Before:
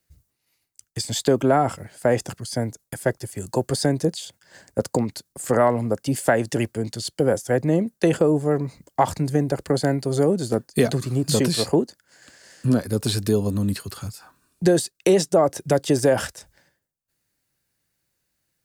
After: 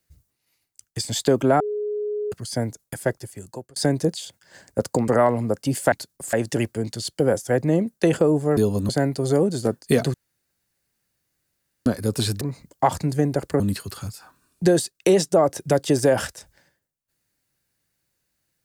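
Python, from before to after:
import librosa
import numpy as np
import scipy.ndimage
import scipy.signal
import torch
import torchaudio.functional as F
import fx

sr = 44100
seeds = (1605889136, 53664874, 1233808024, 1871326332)

y = fx.edit(x, sr, fx.bleep(start_s=1.6, length_s=0.72, hz=418.0, db=-23.5),
    fx.fade_out_span(start_s=2.98, length_s=0.78),
    fx.move(start_s=5.08, length_s=0.41, to_s=6.33),
    fx.swap(start_s=8.57, length_s=1.19, other_s=13.28, other_length_s=0.32),
    fx.room_tone_fill(start_s=11.01, length_s=1.72), tone=tone)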